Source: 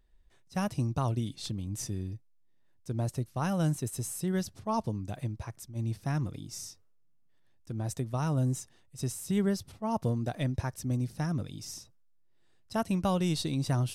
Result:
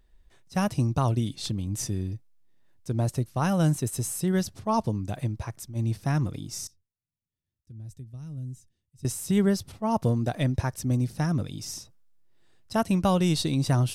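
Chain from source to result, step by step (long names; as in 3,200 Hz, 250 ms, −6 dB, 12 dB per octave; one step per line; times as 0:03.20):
0:06.67–0:09.05: guitar amp tone stack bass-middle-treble 10-0-1
level +5.5 dB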